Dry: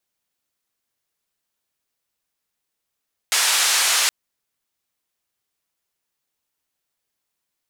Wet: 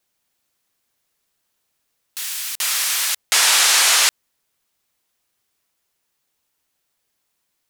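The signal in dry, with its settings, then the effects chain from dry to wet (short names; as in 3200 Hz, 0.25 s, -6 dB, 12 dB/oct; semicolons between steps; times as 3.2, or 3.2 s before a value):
noise band 960–8600 Hz, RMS -18.5 dBFS 0.77 s
in parallel at +1 dB: limiter -15 dBFS; on the sum: echoes that change speed 0.254 s, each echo +6 st, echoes 2, each echo -6 dB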